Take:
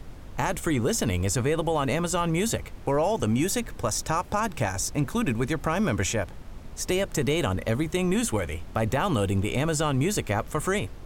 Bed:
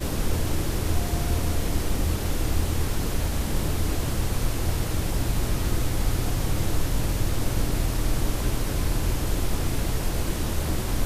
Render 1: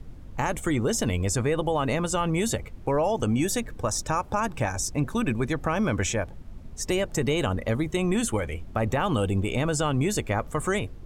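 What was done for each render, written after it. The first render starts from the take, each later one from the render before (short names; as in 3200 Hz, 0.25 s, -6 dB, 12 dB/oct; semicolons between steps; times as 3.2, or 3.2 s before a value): denoiser 9 dB, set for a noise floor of -42 dBFS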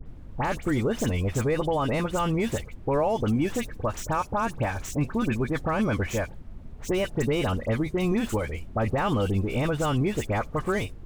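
median filter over 9 samples; dispersion highs, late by 63 ms, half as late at 2200 Hz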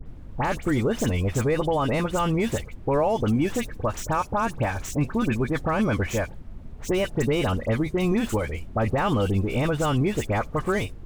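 gain +2 dB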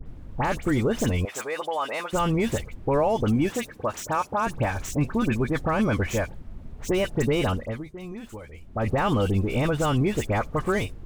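1.25–2.13 HPF 690 Hz; 3.5–4.47 HPF 260 Hz 6 dB/oct; 7.49–8.9 dip -14.5 dB, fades 0.48 s quadratic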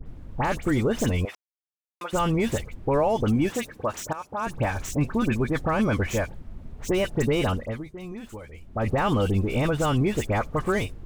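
1.35–2.01 mute; 4.13–4.65 fade in, from -14.5 dB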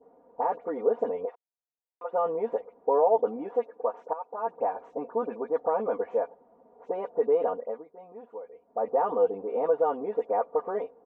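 Chebyshev band-pass 450–900 Hz, order 2; comb 4.2 ms, depth 91%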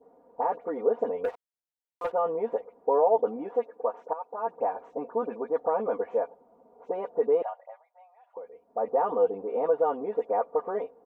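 1.24–2.12 sample leveller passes 2; 6.24–6.92 notch 1800 Hz, Q 5.2; 7.42–8.37 rippled Chebyshev high-pass 570 Hz, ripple 6 dB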